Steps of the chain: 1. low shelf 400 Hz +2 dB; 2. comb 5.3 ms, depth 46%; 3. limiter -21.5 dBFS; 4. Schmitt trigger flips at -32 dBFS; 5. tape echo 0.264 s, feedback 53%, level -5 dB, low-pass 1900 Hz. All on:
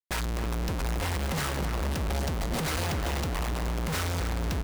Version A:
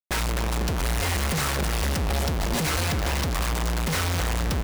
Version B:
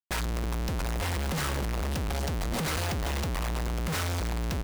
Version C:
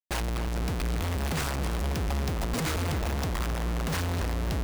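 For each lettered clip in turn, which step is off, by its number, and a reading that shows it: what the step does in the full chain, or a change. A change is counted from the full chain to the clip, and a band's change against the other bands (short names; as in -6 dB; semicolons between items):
3, mean gain reduction 4.0 dB; 5, crest factor change -3.5 dB; 2, 125 Hz band +2.0 dB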